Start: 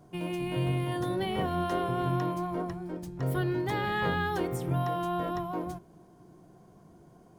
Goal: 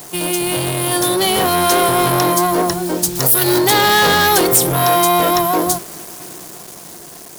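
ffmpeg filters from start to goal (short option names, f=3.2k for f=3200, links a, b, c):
-filter_complex "[0:a]acrossover=split=1700[a][b];[b]aexciter=amount=3.8:drive=4.2:freq=3.5k[c];[a][c]amix=inputs=2:normalize=0,acrusher=bits=8:mix=0:aa=0.000001,asoftclip=type=tanh:threshold=-30dB,bass=f=250:g=-10,treble=f=4k:g=5,dynaudnorm=f=260:g=11:m=4dB,asettb=1/sr,asplit=3[d][e][f];[d]atrim=end=3.154[g];[e]atrim=start=3.15:end=3.59,asetpts=PTS-STARTPTS,afade=t=in:d=0.004:c=qsin,afade=t=out:st=0.436:d=0.004:c=qsin,highshelf=f=5.5k:g=11.5[h];[f]atrim=start=3.586[i];[g][h]acrossfade=d=0.004:c1=hsin:c2=qsin[j];[j][i]acrossfade=d=0.004:c1=qsin:c2=hsin,alimiter=level_in=19dB:limit=-1dB:release=50:level=0:latency=1,volume=-1dB"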